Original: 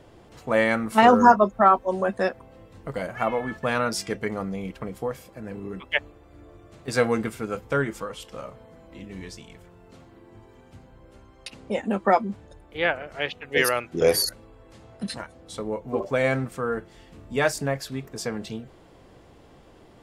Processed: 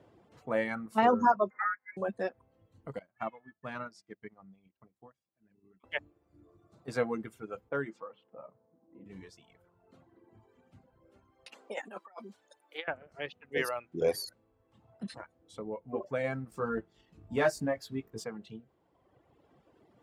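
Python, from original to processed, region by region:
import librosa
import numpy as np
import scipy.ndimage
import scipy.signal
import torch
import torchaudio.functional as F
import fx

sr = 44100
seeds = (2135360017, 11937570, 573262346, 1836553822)

y = fx.chain(x, sr, fx.highpass(hz=1300.0, slope=12),
    fx.freq_invert(carrier_hz=2600),
    fx.band_squash(depth_pct=70), at=(1.5, 1.97))
y = fx.chain(y, sr, fx.lowpass(hz=8000.0, slope=12),
    fx.peak_eq(hz=490.0, db=-8.5, octaves=0.33),
    fx.upward_expand(threshold_db=-39.0, expansion=2.5), at=(2.99, 5.84))
y = fx.chain(y, sr, fx.highpass(hz=160.0, slope=12),
    fx.env_lowpass(base_hz=700.0, full_db=-20.5),
    fx.hum_notches(base_hz=50, count=5), at=(7.69, 9.06))
y = fx.chain(y, sr, fx.high_shelf(hz=2300.0, db=9.0),
    fx.over_compress(threshold_db=-26.0, ratio=-0.5),
    fx.highpass(hz=540.0, slope=12), at=(11.52, 12.88))
y = fx.chain(y, sr, fx.low_shelf(hz=73.0, db=8.0),
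    fx.leveller(passes=1),
    fx.doubler(ms=18.0, db=-5.0), at=(16.47, 18.24))
y = fx.dereverb_blind(y, sr, rt60_s=1.7)
y = scipy.signal.sosfilt(scipy.signal.butter(2, 96.0, 'highpass', fs=sr, output='sos'), y)
y = fx.high_shelf(y, sr, hz=2600.0, db=-9.0)
y = F.gain(torch.from_numpy(y), -8.0).numpy()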